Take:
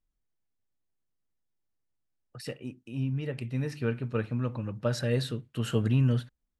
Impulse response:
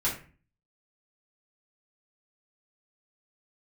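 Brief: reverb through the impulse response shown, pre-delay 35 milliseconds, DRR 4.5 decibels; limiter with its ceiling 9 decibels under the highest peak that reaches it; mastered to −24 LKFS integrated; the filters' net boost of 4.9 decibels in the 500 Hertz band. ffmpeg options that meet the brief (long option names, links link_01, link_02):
-filter_complex "[0:a]equalizer=frequency=500:width_type=o:gain=5.5,alimiter=limit=-20dB:level=0:latency=1,asplit=2[link_01][link_02];[1:a]atrim=start_sample=2205,adelay=35[link_03];[link_02][link_03]afir=irnorm=-1:irlink=0,volume=-13dB[link_04];[link_01][link_04]amix=inputs=2:normalize=0,volume=6.5dB"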